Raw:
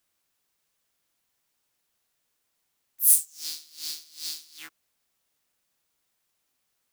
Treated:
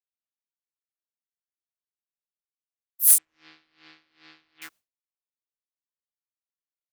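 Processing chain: expander -52 dBFS; 3.18–4.62 LPF 2200 Hz 24 dB/oct; in parallel at -10.5 dB: wrapped overs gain 6.5 dB

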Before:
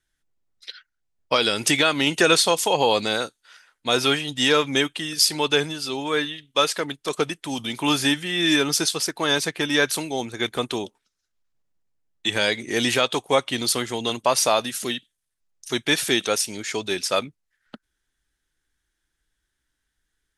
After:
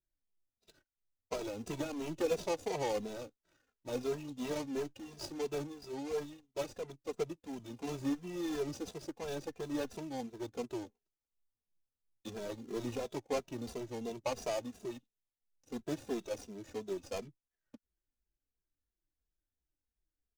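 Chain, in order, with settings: median filter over 41 samples; fifteen-band EQ 160 Hz -3 dB, 1600 Hz -5 dB, 6300 Hz +7 dB; endless flanger 2.6 ms -2.9 Hz; gain -7.5 dB

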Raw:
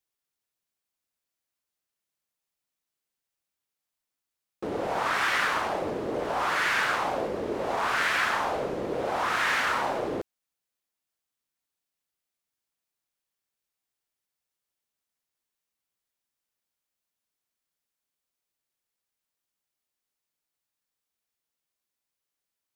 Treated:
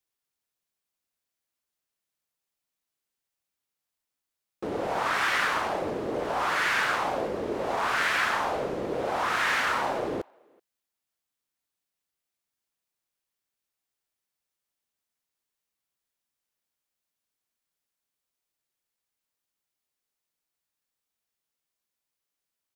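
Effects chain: speakerphone echo 0.38 s, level -29 dB

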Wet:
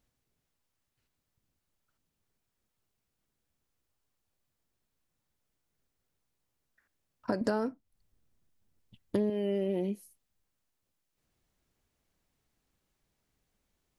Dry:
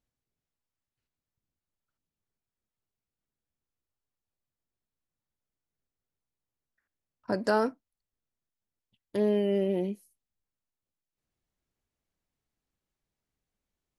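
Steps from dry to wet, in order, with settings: 7.41–9.3 low shelf 320 Hz +11 dB; compressor 5:1, threshold -37 dBFS, peak gain reduction 18 dB; gain +8 dB

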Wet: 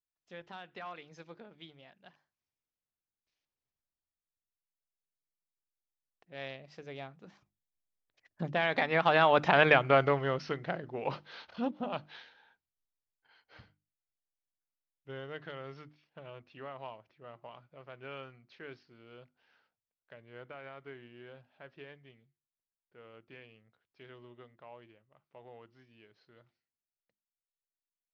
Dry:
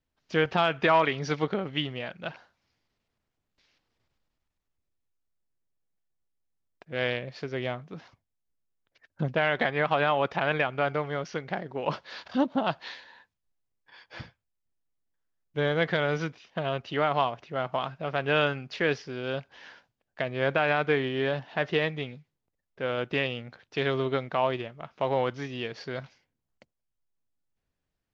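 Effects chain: Doppler pass-by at 9.7, 30 m/s, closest 14 m; notches 50/100/150/200/250/300/350 Hz; gain +4 dB

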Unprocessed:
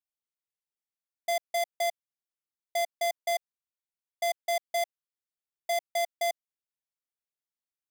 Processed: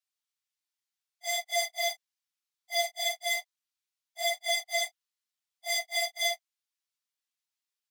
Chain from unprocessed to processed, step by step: phase scrambler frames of 0.1 s; HPF 800 Hz 24 dB/oct; bell 4400 Hz +7.5 dB 2.2 oct

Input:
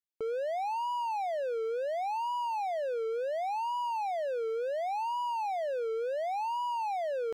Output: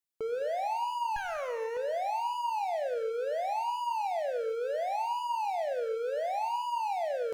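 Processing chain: 1.16–1.77 minimum comb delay 0.48 ms; high shelf 5700 Hz +5 dB; non-linear reverb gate 0.23 s flat, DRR 7 dB

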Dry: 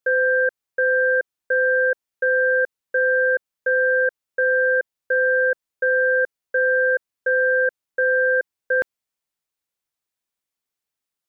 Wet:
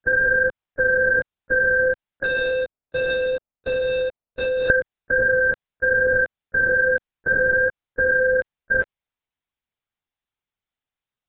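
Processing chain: 2.25–4.69 median filter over 25 samples; LPC vocoder at 8 kHz whisper

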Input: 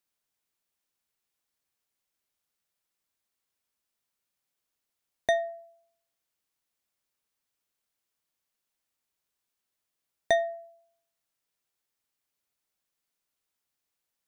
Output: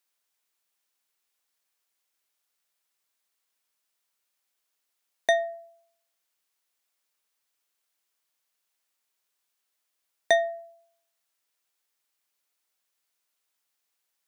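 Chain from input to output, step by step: HPF 630 Hz 6 dB/oct; gain +5 dB

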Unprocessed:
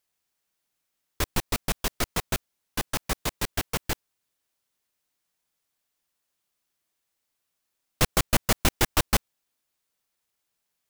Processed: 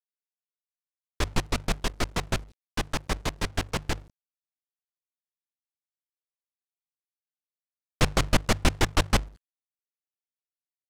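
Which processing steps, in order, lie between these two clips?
low shelf 160 Hz +4 dB; notches 50/100/150 Hz; companded quantiser 4-bit; air absorption 60 m

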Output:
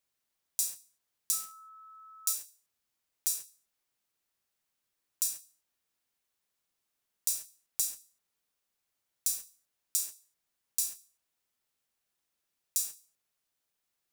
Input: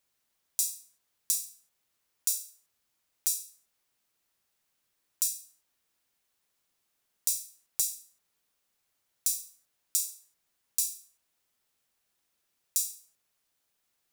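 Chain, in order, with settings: 1.32–2.32 whine 1300 Hz -44 dBFS; in parallel at -6.5 dB: requantised 6-bit, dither none; on the sum: gain -5.5 dB

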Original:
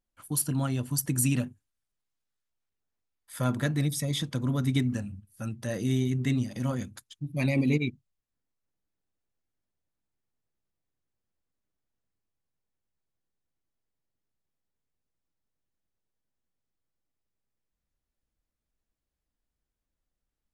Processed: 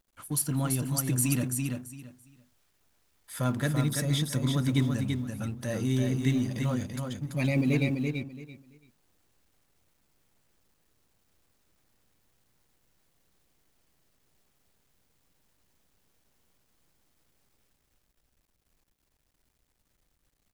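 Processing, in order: G.711 law mismatch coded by mu; on a send: feedback echo 0.336 s, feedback 21%, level -4.5 dB; on the sum: gain -1.5 dB

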